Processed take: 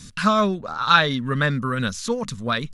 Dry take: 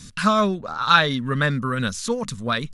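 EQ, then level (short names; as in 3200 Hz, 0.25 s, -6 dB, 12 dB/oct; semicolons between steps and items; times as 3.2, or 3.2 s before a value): dynamic EQ 9100 Hz, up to -5 dB, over -49 dBFS, Q 2.1; 0.0 dB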